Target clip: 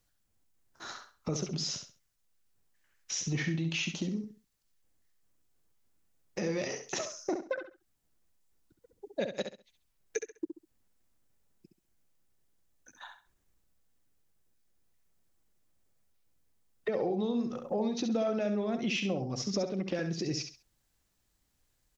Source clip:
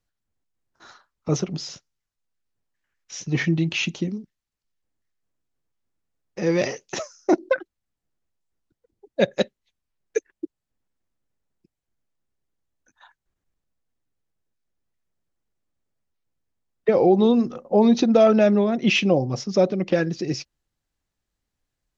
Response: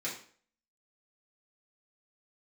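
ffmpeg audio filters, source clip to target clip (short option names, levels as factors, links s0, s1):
-filter_complex "[0:a]highshelf=f=6100:g=8.5,acompressor=threshold=0.02:ratio=4,asplit=2[s0][s1];[s1]alimiter=level_in=2.37:limit=0.0631:level=0:latency=1,volume=0.422,volume=0.794[s2];[s0][s2]amix=inputs=2:normalize=0,aecho=1:1:67|134|201:0.422|0.11|0.0285,volume=0.794"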